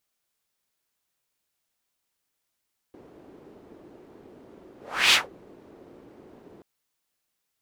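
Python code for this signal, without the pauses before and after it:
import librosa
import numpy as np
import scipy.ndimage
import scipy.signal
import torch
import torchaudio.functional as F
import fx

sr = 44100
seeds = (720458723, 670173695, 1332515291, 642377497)

y = fx.whoosh(sr, seeds[0], length_s=3.68, peak_s=2.19, rise_s=0.37, fall_s=0.17, ends_hz=360.0, peak_hz=3200.0, q=2.0, swell_db=33)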